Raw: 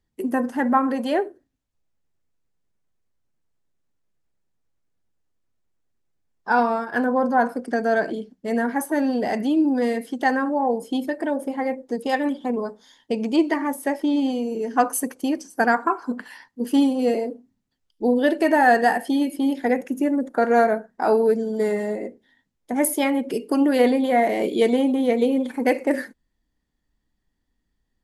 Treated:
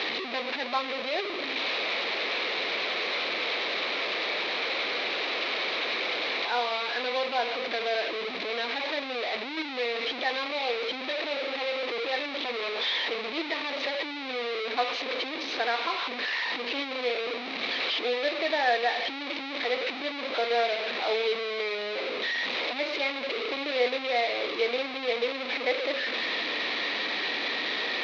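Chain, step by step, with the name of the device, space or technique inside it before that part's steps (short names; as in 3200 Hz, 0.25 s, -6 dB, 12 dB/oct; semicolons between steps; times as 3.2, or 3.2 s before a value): digital answering machine (BPF 330–3100 Hz; delta modulation 32 kbps, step -17.5 dBFS; speaker cabinet 460–4300 Hz, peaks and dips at 490 Hz +3 dB, 880 Hz -5 dB, 1500 Hz -5 dB, 2300 Hz +8 dB, 3900 Hz +9 dB); gain -7 dB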